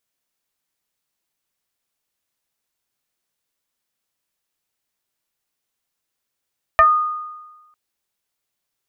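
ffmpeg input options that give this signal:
ffmpeg -f lavfi -i "aevalsrc='0.473*pow(10,-3*t/1.21)*sin(2*PI*1230*t+1.3*pow(10,-3*t/0.17)*sin(2*PI*0.47*1230*t))':duration=0.95:sample_rate=44100" out.wav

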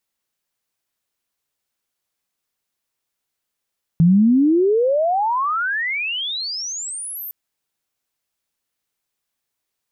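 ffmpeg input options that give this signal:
ffmpeg -f lavfi -i "aevalsrc='pow(10,(-9-19*t/3.31)/20)*sin(2*PI*160*3.31/log(14000/160)*(exp(log(14000/160)*t/3.31)-1))':duration=3.31:sample_rate=44100" out.wav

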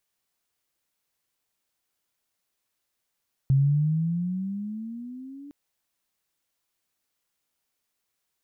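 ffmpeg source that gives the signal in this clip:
ffmpeg -f lavfi -i "aevalsrc='pow(10,(-16-24*t/2.01)/20)*sin(2*PI*133*2.01/(13.5*log(2)/12)*(exp(13.5*log(2)/12*t/2.01)-1))':duration=2.01:sample_rate=44100" out.wav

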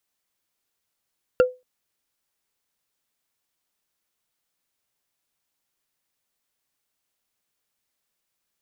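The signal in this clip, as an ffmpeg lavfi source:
ffmpeg -f lavfi -i "aevalsrc='0.355*pow(10,-3*t/0.24)*sin(2*PI*504*t)+0.141*pow(10,-3*t/0.071)*sin(2*PI*1389.5*t)+0.0562*pow(10,-3*t/0.032)*sin(2*PI*2723.6*t)+0.0224*pow(10,-3*t/0.017)*sin(2*PI*4502.2*t)+0.00891*pow(10,-3*t/0.011)*sin(2*PI*6723.4*t)':duration=0.23:sample_rate=44100" out.wav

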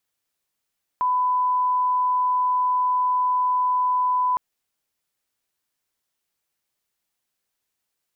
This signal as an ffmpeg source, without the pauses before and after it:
ffmpeg -f lavfi -i "sine=frequency=1000:duration=3.36:sample_rate=44100,volume=0.06dB" out.wav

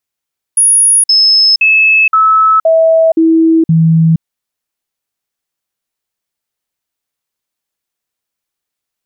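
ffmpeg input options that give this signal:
ffmpeg -f lavfi -i "aevalsrc='0.596*clip(min(mod(t,0.52),0.47-mod(t,0.52))/0.005,0,1)*sin(2*PI*10400*pow(2,-floor(t/0.52)/1)*mod(t,0.52))':duration=3.64:sample_rate=44100" out.wav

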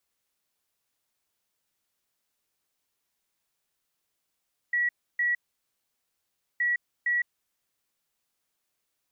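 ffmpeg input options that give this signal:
ffmpeg -f lavfi -i "aevalsrc='0.075*sin(2*PI*1930*t)*clip(min(mod(mod(t,1.87),0.46),0.16-mod(mod(t,1.87),0.46))/0.005,0,1)*lt(mod(t,1.87),0.92)':duration=3.74:sample_rate=44100" out.wav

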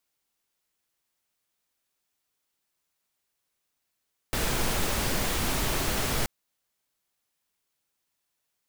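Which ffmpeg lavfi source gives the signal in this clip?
ffmpeg -f lavfi -i "anoisesrc=color=pink:amplitude=0.229:duration=1.93:sample_rate=44100:seed=1" out.wav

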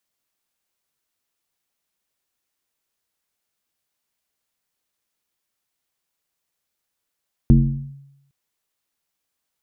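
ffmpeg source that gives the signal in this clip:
ffmpeg -f lavfi -i "aevalsrc='0.501*pow(10,-3*t/0.85)*sin(2*PI*139*t+1.3*clip(1-t/0.47,0,1)*sin(2*PI*0.64*139*t))':duration=0.81:sample_rate=44100" out.wav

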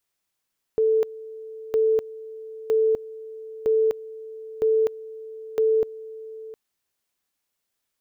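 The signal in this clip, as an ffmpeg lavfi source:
ffmpeg -f lavfi -i "aevalsrc='pow(10,(-16.5-18.5*gte(mod(t,0.96),0.25))/20)*sin(2*PI*441*t)':duration=5.76:sample_rate=44100" out.wav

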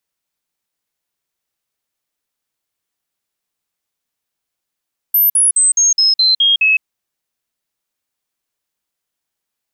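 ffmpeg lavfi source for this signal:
ffmpeg -f lavfi -i "aevalsrc='0.376*clip(min(mod(t,0.21),0.16-mod(t,0.21))/0.005,0,1)*sin(2*PI*13000*pow(2,-floor(t/0.21)/3)*mod(t,0.21))':duration=1.68:sample_rate=44100" out.wav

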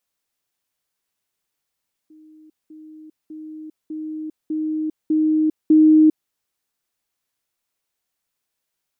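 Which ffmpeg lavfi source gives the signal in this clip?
ffmpeg -f lavfi -i "aevalsrc='pow(10,(-44.5+6*floor(t/0.6))/20)*sin(2*PI*311*t)*clip(min(mod(t,0.6),0.4-mod(t,0.6))/0.005,0,1)':duration=4.2:sample_rate=44100" out.wav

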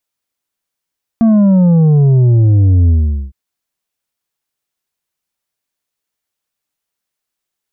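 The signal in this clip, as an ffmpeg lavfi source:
ffmpeg -f lavfi -i "aevalsrc='0.473*clip((2.11-t)/0.43,0,1)*tanh(2*sin(2*PI*230*2.11/log(65/230)*(exp(log(65/230)*t/2.11)-1)))/tanh(2)':duration=2.11:sample_rate=44100" out.wav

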